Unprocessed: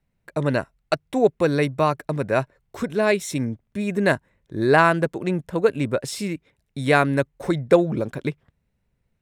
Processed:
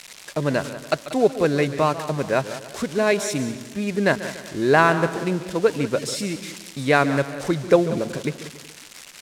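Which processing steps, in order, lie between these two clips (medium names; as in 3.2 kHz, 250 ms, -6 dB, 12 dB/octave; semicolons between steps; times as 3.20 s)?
zero-crossing glitches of -20.5 dBFS; low-pass 6.8 kHz 12 dB/octave; peaking EQ 110 Hz -7.5 dB 0.37 oct; on a send: feedback delay 187 ms, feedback 33%, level -14.5 dB; on the sum: modulated delay 142 ms, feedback 51%, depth 111 cents, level -15 dB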